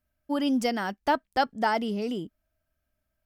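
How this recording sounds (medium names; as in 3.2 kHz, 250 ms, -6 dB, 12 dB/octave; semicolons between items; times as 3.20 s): noise floor -81 dBFS; spectral tilt -3.0 dB/octave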